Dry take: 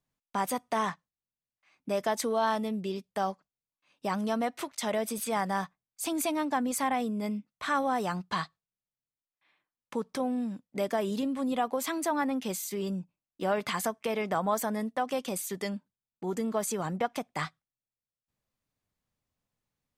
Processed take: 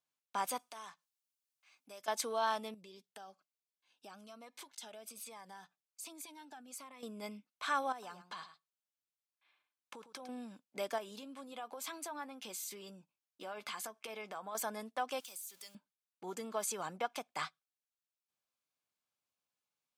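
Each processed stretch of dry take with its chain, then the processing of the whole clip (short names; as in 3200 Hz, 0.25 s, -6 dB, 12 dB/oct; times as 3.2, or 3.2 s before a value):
0.59–2.08 high shelf 4100 Hz +10.5 dB + compressor 2:1, threshold -53 dBFS
2.74–7.03 compressor 4:1, threshold -41 dBFS + cascading phaser falling 1.2 Hz
7.92–10.29 compressor 5:1, threshold -38 dBFS + echo 0.105 s -11.5 dB
10.98–14.55 compressor 3:1, threshold -36 dBFS + doubler 14 ms -12.5 dB
15.2–15.75 zero-crossing step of -43.5 dBFS + pre-emphasis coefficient 0.9 + compressor 3:1, threshold -42 dBFS
whole clip: HPF 1100 Hz 6 dB/oct; high shelf 9000 Hz -4 dB; notch 1900 Hz, Q 6.4; gain -1.5 dB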